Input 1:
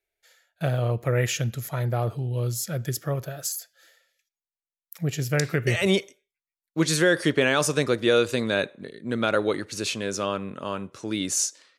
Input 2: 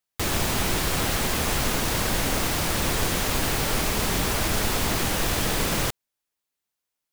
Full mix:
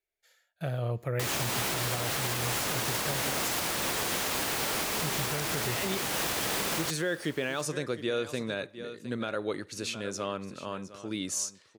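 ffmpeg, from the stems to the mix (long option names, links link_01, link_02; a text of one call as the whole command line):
ffmpeg -i stem1.wav -i stem2.wav -filter_complex "[0:a]volume=-6.5dB,asplit=2[link_01][link_02];[link_02]volume=-15dB[link_03];[1:a]highpass=frequency=370:poles=1,adelay=1000,volume=-1dB,asplit=2[link_04][link_05];[link_05]volume=-22dB[link_06];[link_03][link_06]amix=inputs=2:normalize=0,aecho=0:1:711:1[link_07];[link_01][link_04][link_07]amix=inputs=3:normalize=0,alimiter=limit=-20dB:level=0:latency=1:release=230" out.wav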